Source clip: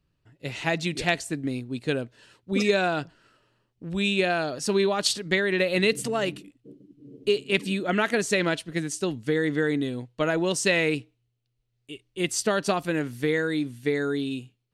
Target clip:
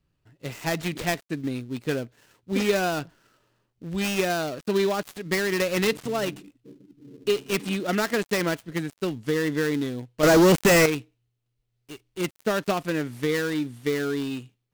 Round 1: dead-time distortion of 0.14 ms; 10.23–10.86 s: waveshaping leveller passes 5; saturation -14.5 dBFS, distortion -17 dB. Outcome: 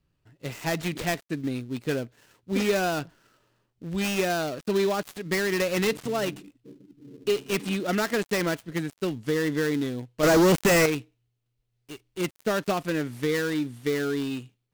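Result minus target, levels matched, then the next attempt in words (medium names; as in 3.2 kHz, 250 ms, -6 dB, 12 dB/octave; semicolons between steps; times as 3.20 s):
saturation: distortion +17 dB
dead-time distortion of 0.14 ms; 10.23–10.86 s: waveshaping leveller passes 5; saturation -5 dBFS, distortion -34 dB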